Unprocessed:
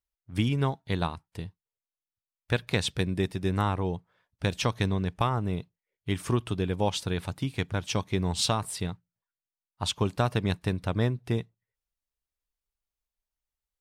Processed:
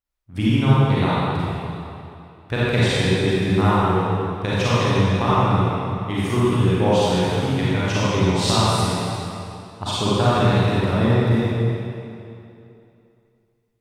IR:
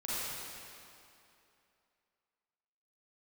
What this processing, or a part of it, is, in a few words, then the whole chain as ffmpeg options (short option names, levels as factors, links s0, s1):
swimming-pool hall: -filter_complex "[1:a]atrim=start_sample=2205[s0];[0:a][s0]afir=irnorm=-1:irlink=0,highshelf=f=4500:g=-6,volume=2"